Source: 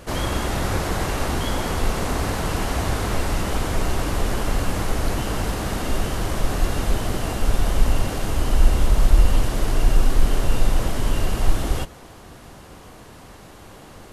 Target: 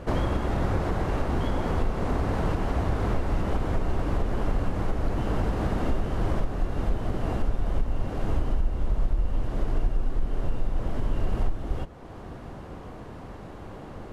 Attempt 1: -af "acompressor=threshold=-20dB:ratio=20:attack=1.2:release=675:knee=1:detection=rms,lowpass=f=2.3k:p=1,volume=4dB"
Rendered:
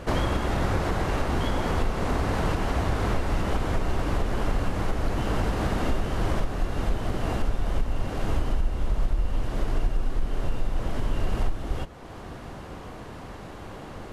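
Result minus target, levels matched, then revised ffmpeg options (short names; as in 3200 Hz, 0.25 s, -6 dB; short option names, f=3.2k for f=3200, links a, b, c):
2000 Hz band +4.0 dB
-af "acompressor=threshold=-20dB:ratio=20:attack=1.2:release=675:knee=1:detection=rms,lowpass=f=900:p=1,volume=4dB"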